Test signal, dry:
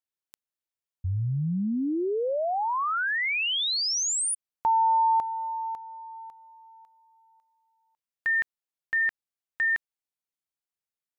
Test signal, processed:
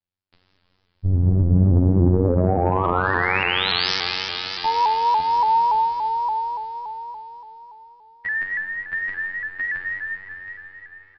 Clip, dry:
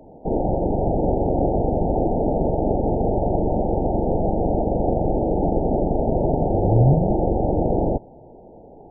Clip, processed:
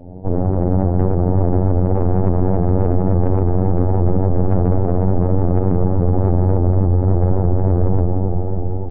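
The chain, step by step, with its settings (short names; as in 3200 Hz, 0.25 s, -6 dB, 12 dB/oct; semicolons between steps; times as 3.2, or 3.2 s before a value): octaver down 1 oct, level +4 dB; reverb removal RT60 0.76 s; low shelf 310 Hz +9.5 dB; compressor, threshold -12 dBFS; plate-style reverb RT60 4.4 s, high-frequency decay 0.9×, DRR -4.5 dB; soft clip -10.5 dBFS; robotiser 91.4 Hz; downsampling 11025 Hz; feedback echo 0.719 s, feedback 29%, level -11.5 dB; shaped vibrato saw up 3.5 Hz, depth 100 cents; gain +2 dB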